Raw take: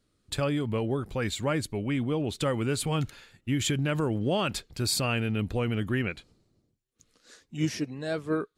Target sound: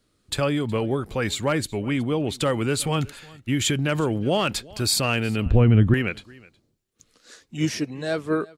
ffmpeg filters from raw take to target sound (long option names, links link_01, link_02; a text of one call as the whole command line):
ffmpeg -i in.wav -filter_complex "[0:a]lowshelf=frequency=280:gain=-3.5,aecho=1:1:367:0.0708,acrossover=split=470|3400[link_01][link_02][link_03];[link_02]volume=23.5dB,asoftclip=hard,volume=-23.5dB[link_04];[link_01][link_04][link_03]amix=inputs=3:normalize=0,asettb=1/sr,asplit=3[link_05][link_06][link_07];[link_05]atrim=end=5.464[link_08];[link_06]atrim=start=5.46:end=5.94,asetpts=PTS-STARTPTS,afade=type=in:duration=0.004:curve=qsin,afade=type=out:start_time=0.476:duration=0.004:curve=qsin,aemphasis=mode=reproduction:type=riaa[link_09];[link_07]atrim=start=5.936[link_10];[link_08][link_09]acrossfade=duration=0.004:curve1=hsin:curve2=qsin[link_11];[link_11][link_10]acrossfade=duration=0.004:curve1=qsin:curve2=hsin,volume=6dB" out.wav